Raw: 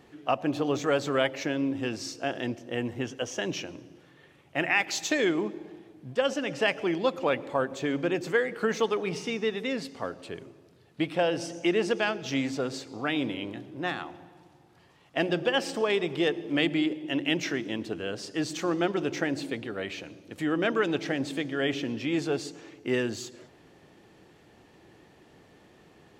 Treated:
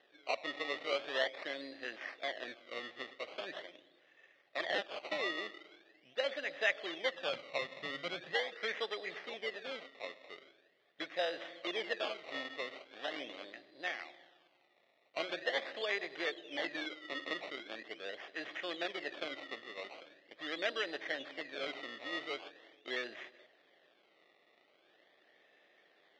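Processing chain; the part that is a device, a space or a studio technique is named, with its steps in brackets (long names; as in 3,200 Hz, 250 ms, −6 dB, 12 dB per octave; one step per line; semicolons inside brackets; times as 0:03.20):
circuit-bent sampling toy (sample-and-hold swept by an LFO 19×, swing 100% 0.42 Hz; loudspeaker in its box 600–4,500 Hz, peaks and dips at 600 Hz +6 dB, 940 Hz −9 dB, 1,400 Hz −4 dB, 1,900 Hz +9 dB, 3,400 Hz +8 dB)
0:07.15–0:08.35: low shelf with overshoot 230 Hz +9 dB, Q 1.5
level −8.5 dB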